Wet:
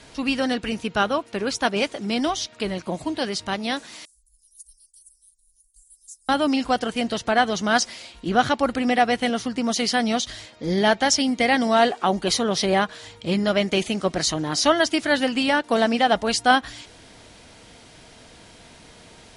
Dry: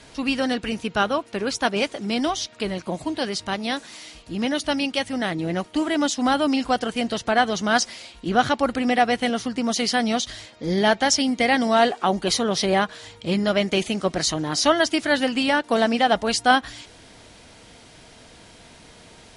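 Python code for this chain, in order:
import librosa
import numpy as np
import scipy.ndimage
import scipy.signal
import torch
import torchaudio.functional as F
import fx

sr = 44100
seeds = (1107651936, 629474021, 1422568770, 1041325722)

y = fx.cheby2_bandstop(x, sr, low_hz=130.0, high_hz=2500.0, order=4, stop_db=70, at=(4.05, 6.29))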